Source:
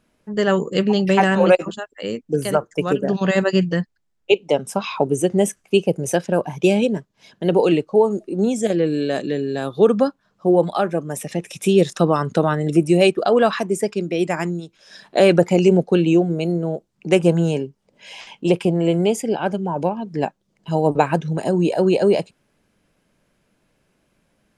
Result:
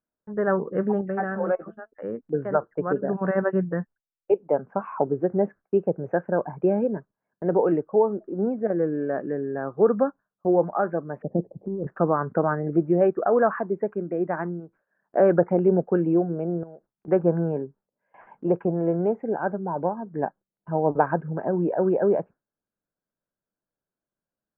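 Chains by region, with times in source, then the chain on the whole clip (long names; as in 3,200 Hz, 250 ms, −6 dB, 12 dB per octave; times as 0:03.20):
0:01.01–0:01.92: notch filter 990 Hz, Q 5.6 + tuned comb filter 220 Hz, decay 0.15 s
0:11.22–0:11.87: inverse Chebyshev low-pass filter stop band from 1,300 Hz + dynamic equaliser 230 Hz, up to +7 dB, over −32 dBFS, Q 2.1 + compressor whose output falls as the input rises −20 dBFS
0:16.63–0:17.08: variable-slope delta modulation 64 kbit/s + downward compressor 4 to 1, threshold −37 dBFS
whole clip: elliptic low-pass filter 1,600 Hz, stop band 60 dB; noise gate with hold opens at −37 dBFS; low-shelf EQ 350 Hz −5 dB; level −2.5 dB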